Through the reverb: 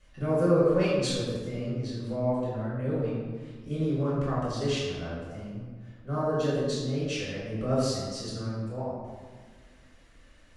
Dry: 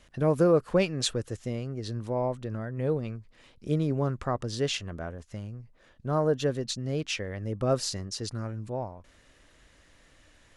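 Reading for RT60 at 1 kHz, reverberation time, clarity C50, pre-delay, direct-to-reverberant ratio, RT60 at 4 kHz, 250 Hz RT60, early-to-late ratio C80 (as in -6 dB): 1.5 s, 1.6 s, -1.0 dB, 3 ms, -10.5 dB, 0.95 s, 2.4 s, 1.5 dB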